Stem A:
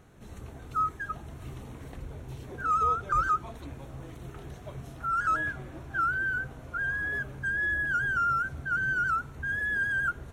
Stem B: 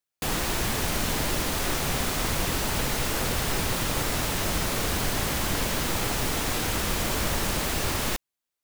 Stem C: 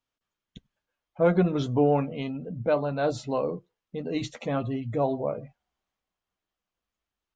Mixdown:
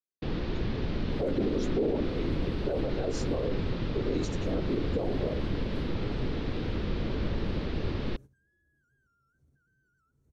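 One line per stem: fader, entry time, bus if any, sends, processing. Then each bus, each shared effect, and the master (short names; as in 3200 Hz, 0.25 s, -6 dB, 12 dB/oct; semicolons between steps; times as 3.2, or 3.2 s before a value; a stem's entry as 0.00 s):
-11.5 dB, 0.90 s, no bus, no send, compressor, threshold -33 dBFS, peak gain reduction 11 dB; limiter -33.5 dBFS, peak gain reduction 9 dB
-0.5 dB, 0.00 s, bus A, no send, steep low-pass 3600 Hz 36 dB/oct
+2.5 dB, 0.00 s, bus A, no send, whisperiser; Chebyshev high-pass 330 Hz, order 2
bus A: 0.0 dB, limiter -17.5 dBFS, peak gain reduction 10.5 dB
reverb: off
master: gate -40 dBFS, range -13 dB; band shelf 1500 Hz -12.5 dB 2.8 oct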